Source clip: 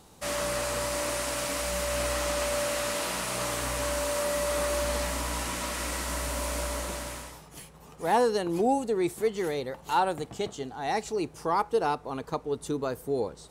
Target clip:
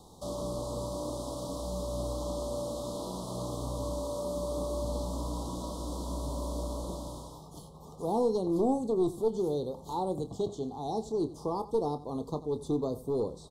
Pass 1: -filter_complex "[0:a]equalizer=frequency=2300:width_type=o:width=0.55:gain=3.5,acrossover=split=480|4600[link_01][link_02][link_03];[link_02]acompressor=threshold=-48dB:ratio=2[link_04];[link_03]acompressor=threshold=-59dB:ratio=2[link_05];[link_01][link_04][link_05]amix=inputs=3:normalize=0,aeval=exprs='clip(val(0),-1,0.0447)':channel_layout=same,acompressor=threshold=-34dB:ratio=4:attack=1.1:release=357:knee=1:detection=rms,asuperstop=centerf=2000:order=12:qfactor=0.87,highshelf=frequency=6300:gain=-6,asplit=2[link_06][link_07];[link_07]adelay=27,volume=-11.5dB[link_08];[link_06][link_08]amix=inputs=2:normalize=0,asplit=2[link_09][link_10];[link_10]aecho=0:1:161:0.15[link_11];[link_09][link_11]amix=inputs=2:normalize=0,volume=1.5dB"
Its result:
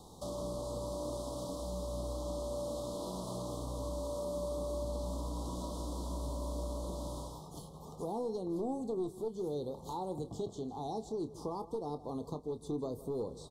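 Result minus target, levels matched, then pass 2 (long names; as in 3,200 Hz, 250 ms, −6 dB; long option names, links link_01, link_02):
echo 71 ms late; downward compressor: peak gain reduction +10.5 dB
-filter_complex "[0:a]equalizer=frequency=2300:width_type=o:width=0.55:gain=3.5,acrossover=split=480|4600[link_01][link_02][link_03];[link_02]acompressor=threshold=-48dB:ratio=2[link_04];[link_03]acompressor=threshold=-59dB:ratio=2[link_05];[link_01][link_04][link_05]amix=inputs=3:normalize=0,aeval=exprs='clip(val(0),-1,0.0447)':channel_layout=same,asuperstop=centerf=2000:order=12:qfactor=0.87,highshelf=frequency=6300:gain=-6,asplit=2[link_06][link_07];[link_07]adelay=27,volume=-11.5dB[link_08];[link_06][link_08]amix=inputs=2:normalize=0,asplit=2[link_09][link_10];[link_10]aecho=0:1:90:0.15[link_11];[link_09][link_11]amix=inputs=2:normalize=0,volume=1.5dB"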